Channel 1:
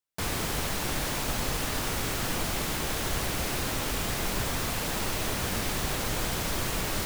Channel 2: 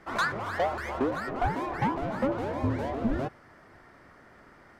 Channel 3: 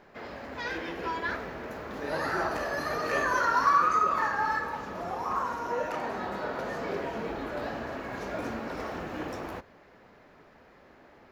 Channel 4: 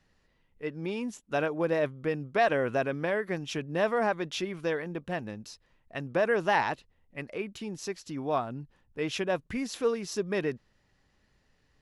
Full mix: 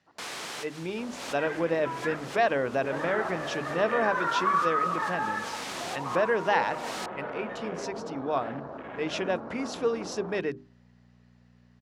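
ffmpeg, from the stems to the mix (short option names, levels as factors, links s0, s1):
-filter_complex "[0:a]highpass=f=710:p=1,volume=0.75[s0];[1:a]alimiter=level_in=1.5:limit=0.0631:level=0:latency=1,volume=0.668,lowpass=1100,aeval=exprs='val(0)*pow(10,-25*if(lt(mod(-8.8*n/s,1),2*abs(-8.8)/1000),1-mod(-8.8*n/s,1)/(2*abs(-8.8)/1000),(mod(-8.8*n/s,1)-2*abs(-8.8)/1000)/(1-2*abs(-8.8)/1000))/20)':c=same,volume=0.188[s1];[2:a]afwtdn=0.0126,aeval=exprs='val(0)+0.00398*(sin(2*PI*60*n/s)+sin(2*PI*2*60*n/s)/2+sin(2*PI*3*60*n/s)/3+sin(2*PI*4*60*n/s)/4+sin(2*PI*5*60*n/s)/5)':c=same,adelay=800,volume=0.75[s2];[3:a]volume=1.06,asplit=2[s3][s4];[s4]apad=whole_len=311230[s5];[s0][s5]sidechaincompress=threshold=0.00562:ratio=12:attack=24:release=143[s6];[s6][s1][s2][s3]amix=inputs=4:normalize=0,highpass=130,lowpass=7200,bandreject=f=50:t=h:w=6,bandreject=f=100:t=h:w=6,bandreject=f=150:t=h:w=6,bandreject=f=200:t=h:w=6,bandreject=f=250:t=h:w=6,bandreject=f=300:t=h:w=6,bandreject=f=350:t=h:w=6,bandreject=f=400:t=h:w=6"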